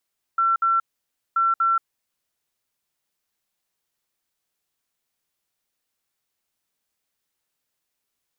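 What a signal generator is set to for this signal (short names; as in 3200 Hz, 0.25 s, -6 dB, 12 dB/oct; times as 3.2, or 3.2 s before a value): beep pattern sine 1350 Hz, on 0.18 s, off 0.06 s, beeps 2, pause 0.56 s, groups 2, -16.5 dBFS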